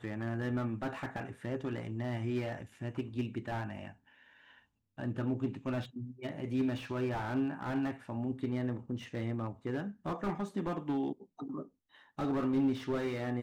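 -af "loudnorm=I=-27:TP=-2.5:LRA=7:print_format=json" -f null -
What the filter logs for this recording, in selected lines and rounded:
"input_i" : "-36.3",
"input_tp" : "-20.9",
"input_lra" : "4.0",
"input_thresh" : "-46.7",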